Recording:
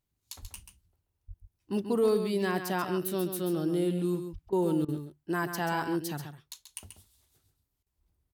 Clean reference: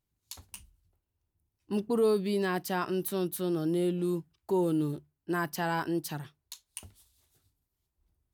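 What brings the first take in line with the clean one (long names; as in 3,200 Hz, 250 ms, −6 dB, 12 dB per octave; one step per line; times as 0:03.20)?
clipped peaks rebuilt −18.5 dBFS
0:00.41–0:00.53: high-pass filter 140 Hz 24 dB per octave
0:01.27–0:01.39: high-pass filter 140 Hz 24 dB per octave
0:04.32–0:04.44: high-pass filter 140 Hz 24 dB per octave
repair the gap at 0:04.49/0:04.85/0:07.83, 33 ms
echo removal 135 ms −8.5 dB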